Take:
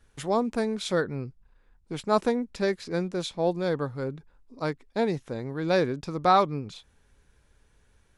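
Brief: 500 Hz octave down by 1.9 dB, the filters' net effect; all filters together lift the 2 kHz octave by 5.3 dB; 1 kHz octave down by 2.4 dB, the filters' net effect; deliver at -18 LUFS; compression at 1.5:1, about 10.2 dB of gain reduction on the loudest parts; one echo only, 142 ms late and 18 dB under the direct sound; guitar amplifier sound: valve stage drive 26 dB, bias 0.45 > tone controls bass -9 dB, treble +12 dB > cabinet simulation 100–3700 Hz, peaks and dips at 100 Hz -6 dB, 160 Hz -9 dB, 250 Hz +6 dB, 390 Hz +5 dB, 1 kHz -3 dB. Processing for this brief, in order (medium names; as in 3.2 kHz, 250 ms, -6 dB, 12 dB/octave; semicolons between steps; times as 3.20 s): peaking EQ 500 Hz -3.5 dB; peaking EQ 1 kHz -3.5 dB; peaking EQ 2 kHz +8 dB; compression 1.5:1, threshold -46 dBFS; delay 142 ms -18 dB; valve stage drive 26 dB, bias 0.45; tone controls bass -9 dB, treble +12 dB; cabinet simulation 100–3700 Hz, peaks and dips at 100 Hz -6 dB, 160 Hz -9 dB, 250 Hz +6 dB, 390 Hz +5 dB, 1 kHz -3 dB; trim +21.5 dB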